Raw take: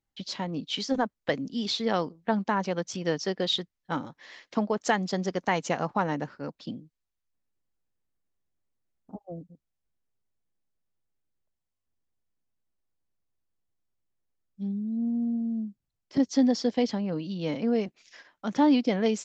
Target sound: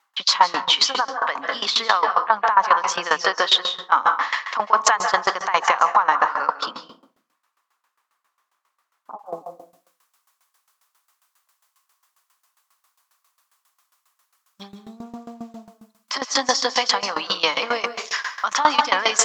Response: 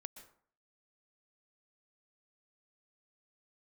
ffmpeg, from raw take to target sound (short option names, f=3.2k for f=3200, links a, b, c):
-filter_complex "[0:a]asetnsamples=n=441:p=0,asendcmd='9.26 highshelf g 8',highshelf=f=3.7k:g=-5.5,acompressor=threshold=-34dB:ratio=2,highpass=f=1.1k:t=q:w=4.6[a];[1:a]atrim=start_sample=2205,asetrate=35721,aresample=44100[b];[a][b]afir=irnorm=-1:irlink=0,alimiter=level_in=31dB:limit=-1dB:release=50:level=0:latency=1,aeval=exprs='val(0)*pow(10,-18*if(lt(mod(7.4*n/s,1),2*abs(7.4)/1000),1-mod(7.4*n/s,1)/(2*abs(7.4)/1000),(mod(7.4*n/s,1)-2*abs(7.4)/1000)/(1-2*abs(7.4)/1000))/20)':c=same"